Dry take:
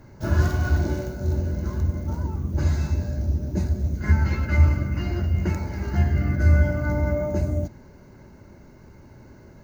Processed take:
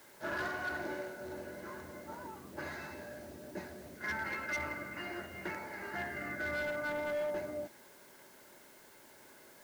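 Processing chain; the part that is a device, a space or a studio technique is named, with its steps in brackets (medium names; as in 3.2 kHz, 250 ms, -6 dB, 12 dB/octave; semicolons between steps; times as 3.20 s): drive-through speaker (band-pass 480–3400 Hz; peaking EQ 1.8 kHz +7 dB 0.44 oct; hard clipper -27 dBFS, distortion -16 dB; white noise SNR 20 dB); trim -5 dB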